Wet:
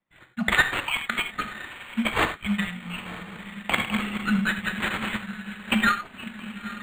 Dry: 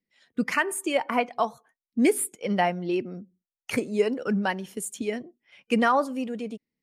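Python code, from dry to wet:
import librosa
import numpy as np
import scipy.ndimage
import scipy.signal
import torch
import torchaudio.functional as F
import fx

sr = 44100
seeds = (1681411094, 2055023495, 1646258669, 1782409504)

y = fx.reverse_delay_fb(x, sr, ms=102, feedback_pct=70, wet_db=-3.0, at=(3.16, 5.21))
y = np.clip(10.0 ** (15.5 / 20.0) * y, -1.0, 1.0) / 10.0 ** (15.5 / 20.0)
y = fx.brickwall_bandstop(y, sr, low_hz=230.0, high_hz=1200.0)
y = fx.peak_eq(y, sr, hz=1100.0, db=4.0, octaves=1.1)
y = fx.echo_diffused(y, sr, ms=943, feedback_pct=50, wet_db=-11)
y = fx.transient(y, sr, attack_db=7, sustain_db=-8)
y = fx.peak_eq(y, sr, hz=5200.0, db=13.0, octaves=2.2)
y = fx.rev_gated(y, sr, seeds[0], gate_ms=120, shape='flat', drr_db=7.0)
y = np.interp(np.arange(len(y)), np.arange(len(y))[::8], y[::8])
y = F.gain(torch.from_numpy(y), -1.0).numpy()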